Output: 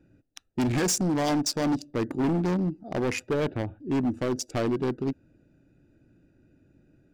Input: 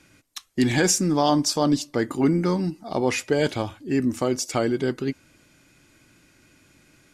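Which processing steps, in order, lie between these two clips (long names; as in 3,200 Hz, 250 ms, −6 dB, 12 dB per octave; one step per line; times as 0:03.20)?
adaptive Wiener filter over 41 samples
0:03.31–0:03.80: low-pass filter 2,500 Hz 12 dB per octave
gain into a clipping stage and back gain 22 dB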